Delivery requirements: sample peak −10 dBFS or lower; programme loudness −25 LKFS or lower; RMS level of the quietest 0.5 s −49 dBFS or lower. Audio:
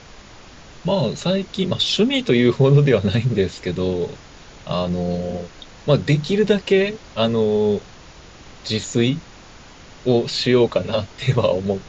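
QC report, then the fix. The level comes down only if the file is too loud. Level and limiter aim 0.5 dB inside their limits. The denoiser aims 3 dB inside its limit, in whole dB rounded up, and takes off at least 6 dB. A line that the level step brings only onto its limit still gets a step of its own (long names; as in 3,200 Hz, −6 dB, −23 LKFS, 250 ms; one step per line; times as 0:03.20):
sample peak −4.0 dBFS: out of spec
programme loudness −19.5 LKFS: out of spec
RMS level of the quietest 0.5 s −43 dBFS: out of spec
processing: broadband denoise 6 dB, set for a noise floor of −43 dBFS
level −6 dB
brickwall limiter −10.5 dBFS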